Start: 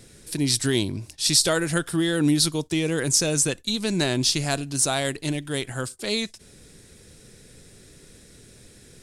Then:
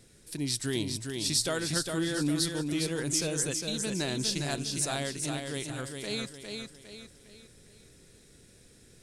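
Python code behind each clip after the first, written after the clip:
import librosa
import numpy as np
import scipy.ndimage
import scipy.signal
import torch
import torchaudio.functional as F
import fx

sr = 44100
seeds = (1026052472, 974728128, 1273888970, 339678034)

y = fx.echo_feedback(x, sr, ms=406, feedback_pct=41, wet_db=-5.0)
y = F.gain(torch.from_numpy(y), -9.0).numpy()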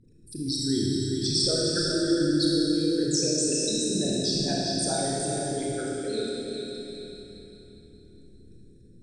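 y = fx.envelope_sharpen(x, sr, power=3.0)
y = scipy.signal.sosfilt(scipy.signal.butter(2, 9600.0, 'lowpass', fs=sr, output='sos'), y)
y = fx.rev_schroeder(y, sr, rt60_s=3.2, comb_ms=26, drr_db=-4.5)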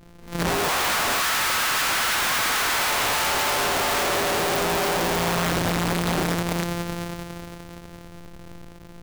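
y = np.r_[np.sort(x[:len(x) // 256 * 256].reshape(-1, 256), axis=1).ravel(), x[len(x) // 256 * 256:]]
y = fx.echo_pitch(y, sr, ms=210, semitones=5, count=3, db_per_echo=-3.0)
y = (np.mod(10.0 ** (26.5 / 20.0) * y + 1.0, 2.0) - 1.0) / 10.0 ** (26.5 / 20.0)
y = F.gain(torch.from_numpy(y), 8.5).numpy()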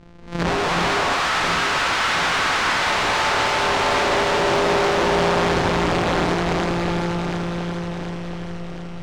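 y = fx.air_absorb(x, sr, metres=110.0)
y = fx.echo_alternate(y, sr, ms=363, hz=1200.0, feedback_pct=73, wet_db=-3.0)
y = F.gain(torch.from_numpy(y), 3.0).numpy()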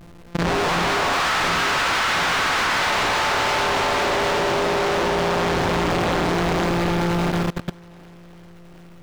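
y = x + 0.5 * 10.0 ** (-29.5 / 20.0) * np.sign(x)
y = fx.level_steps(y, sr, step_db=23)
y = F.gain(torch.from_numpy(y), 2.5).numpy()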